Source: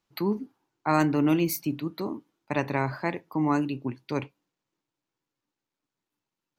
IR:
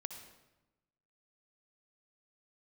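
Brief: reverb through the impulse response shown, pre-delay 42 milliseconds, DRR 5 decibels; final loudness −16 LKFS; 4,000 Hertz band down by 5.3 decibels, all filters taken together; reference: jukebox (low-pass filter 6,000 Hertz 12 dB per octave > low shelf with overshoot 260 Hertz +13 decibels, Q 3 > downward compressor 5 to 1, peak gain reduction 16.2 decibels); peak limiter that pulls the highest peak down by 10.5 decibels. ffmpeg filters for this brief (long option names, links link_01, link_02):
-filter_complex "[0:a]equalizer=frequency=4000:width_type=o:gain=-6,alimiter=limit=-20dB:level=0:latency=1,asplit=2[link_01][link_02];[1:a]atrim=start_sample=2205,adelay=42[link_03];[link_02][link_03]afir=irnorm=-1:irlink=0,volume=-2.5dB[link_04];[link_01][link_04]amix=inputs=2:normalize=0,lowpass=6000,lowshelf=frequency=260:width_type=q:width=3:gain=13,acompressor=threshold=-26dB:ratio=5,volume=14dB"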